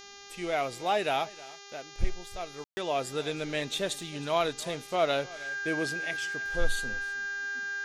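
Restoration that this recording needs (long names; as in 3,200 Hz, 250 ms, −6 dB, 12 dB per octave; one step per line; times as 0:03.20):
hum removal 401 Hz, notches 17
notch filter 1,600 Hz, Q 30
ambience match 0:02.64–0:02.77
echo removal 316 ms −20 dB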